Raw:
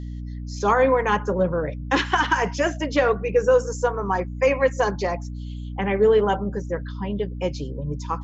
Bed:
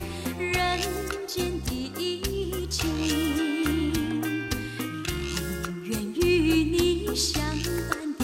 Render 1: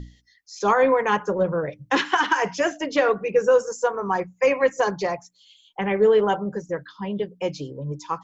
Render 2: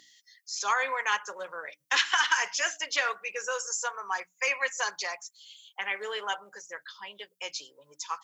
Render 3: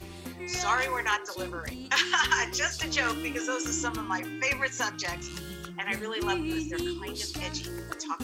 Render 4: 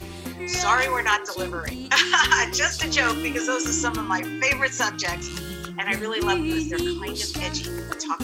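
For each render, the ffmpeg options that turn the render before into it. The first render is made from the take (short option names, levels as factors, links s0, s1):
-af "bandreject=f=60:t=h:w=6,bandreject=f=120:t=h:w=6,bandreject=f=180:t=h:w=6,bandreject=f=240:t=h:w=6,bandreject=f=300:t=h:w=6"
-af "highpass=1500,highshelf=f=5900:g=11.5"
-filter_complex "[1:a]volume=0.335[s0];[0:a][s0]amix=inputs=2:normalize=0"
-af "volume=2.11"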